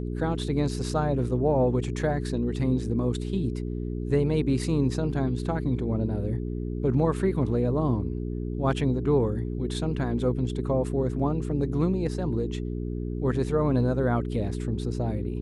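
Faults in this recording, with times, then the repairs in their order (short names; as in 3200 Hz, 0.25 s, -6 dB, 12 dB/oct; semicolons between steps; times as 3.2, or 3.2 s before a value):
hum 60 Hz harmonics 7 -31 dBFS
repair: de-hum 60 Hz, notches 7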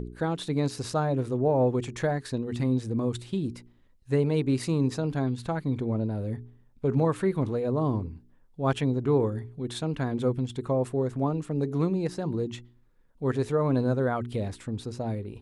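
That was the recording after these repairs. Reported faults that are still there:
none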